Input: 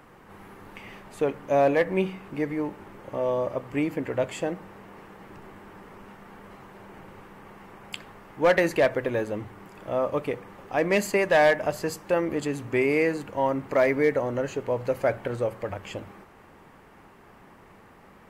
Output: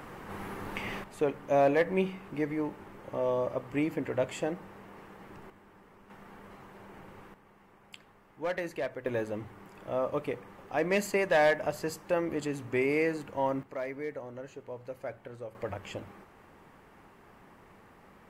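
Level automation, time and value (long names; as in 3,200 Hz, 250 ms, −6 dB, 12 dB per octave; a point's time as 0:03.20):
+6.5 dB
from 0:01.04 −3.5 dB
from 0:05.50 −11 dB
from 0:06.10 −4 dB
from 0:07.34 −13 dB
from 0:09.06 −5 dB
from 0:13.63 −15 dB
from 0:15.55 −4 dB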